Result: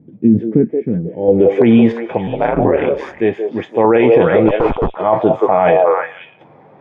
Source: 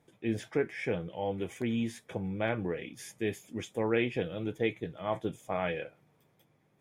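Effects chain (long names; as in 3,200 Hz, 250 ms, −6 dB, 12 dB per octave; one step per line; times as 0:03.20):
meter weighting curve D
0:04.48–0:04.97: comparator with hysteresis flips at −34 dBFS
square-wave tremolo 0.78 Hz, depth 60%, duty 50%
low-pass filter sweep 220 Hz → 890 Hz, 0:00.99–0:01.62
0:02.27–0:03.18: ring modulation 70 Hz
on a send: echo through a band-pass that steps 176 ms, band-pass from 530 Hz, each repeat 1.4 octaves, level −3.5 dB
on the sum: boost into a limiter +26 dB
level −1 dB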